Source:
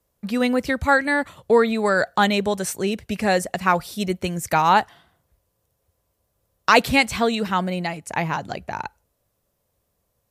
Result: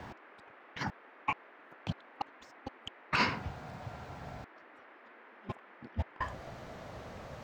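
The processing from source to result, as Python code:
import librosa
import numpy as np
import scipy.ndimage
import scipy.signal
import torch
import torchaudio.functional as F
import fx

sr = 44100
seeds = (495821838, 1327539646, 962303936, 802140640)

y = fx.speed_glide(x, sr, from_pct=167, to_pct=110)
y = fx.low_shelf(y, sr, hz=82.0, db=-10.0)
y = fx.over_compress(y, sr, threshold_db=-52.0, ratio=-0.5)
y = fx.air_absorb(y, sr, metres=180.0)
y = fx.dmg_noise_band(y, sr, seeds[0], low_hz=260.0, high_hz=2000.0, level_db=-63.0)
y = y * 10.0 ** (6.5 / 20.0)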